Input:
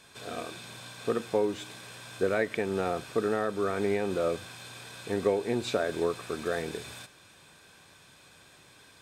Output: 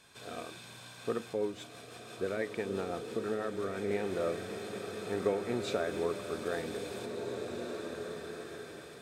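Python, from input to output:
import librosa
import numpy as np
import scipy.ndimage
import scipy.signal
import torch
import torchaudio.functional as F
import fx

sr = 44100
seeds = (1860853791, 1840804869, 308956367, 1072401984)

y = fx.rotary(x, sr, hz=6.0, at=(1.33, 3.91))
y = fx.rev_bloom(y, sr, seeds[0], attack_ms=2030, drr_db=4.5)
y = y * 10.0 ** (-5.0 / 20.0)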